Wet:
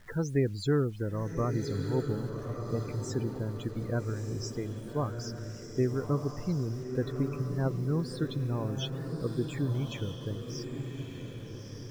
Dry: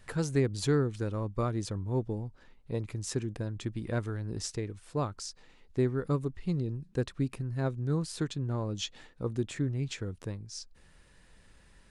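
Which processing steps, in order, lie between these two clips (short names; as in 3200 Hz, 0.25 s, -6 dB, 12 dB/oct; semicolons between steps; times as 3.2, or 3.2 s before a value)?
loudest bins only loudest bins 32; requantised 10-bit, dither none; diffused feedback echo 1.247 s, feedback 42%, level -6 dB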